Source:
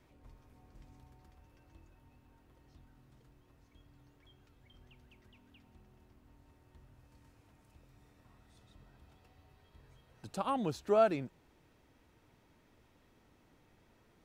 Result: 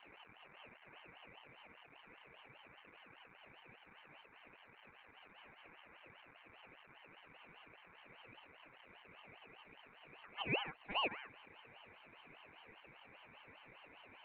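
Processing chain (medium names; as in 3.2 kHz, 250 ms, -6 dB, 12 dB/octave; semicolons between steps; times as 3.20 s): jump at every zero crossing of -44 dBFS; high-pass 200 Hz 12 dB/octave; tilt EQ -3.5 dB/octave; saturation -26.5 dBFS, distortion -9 dB; formant shift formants +5 st; cascade formant filter a; static phaser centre 1.6 kHz, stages 4; ring modulator with a swept carrier 1.6 kHz, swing 25%, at 5 Hz; trim +13.5 dB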